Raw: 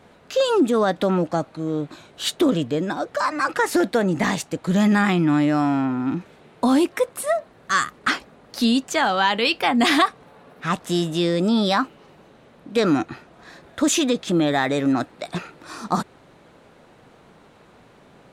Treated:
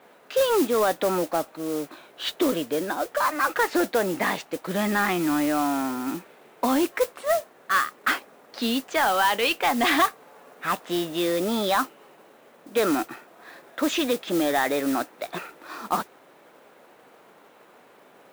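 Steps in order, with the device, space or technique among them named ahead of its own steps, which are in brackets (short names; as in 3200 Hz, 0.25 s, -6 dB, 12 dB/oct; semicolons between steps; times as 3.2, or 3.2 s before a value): carbon microphone (BPF 350–3300 Hz; soft clip -12 dBFS, distortion -20 dB; modulation noise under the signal 14 dB)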